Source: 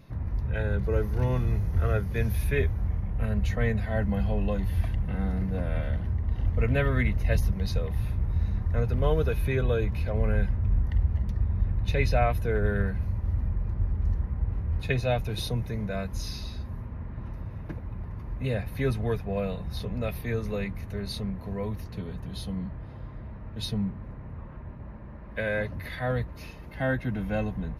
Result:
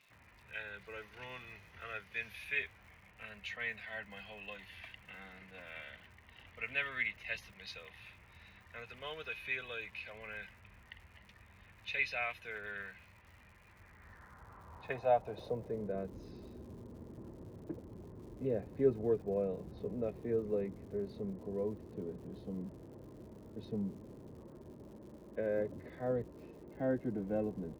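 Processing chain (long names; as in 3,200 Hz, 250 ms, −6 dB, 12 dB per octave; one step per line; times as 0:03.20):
band-pass filter sweep 2,600 Hz → 370 Hz, 0:13.66–0:15.96
surface crackle 180 per second −57 dBFS
level +2 dB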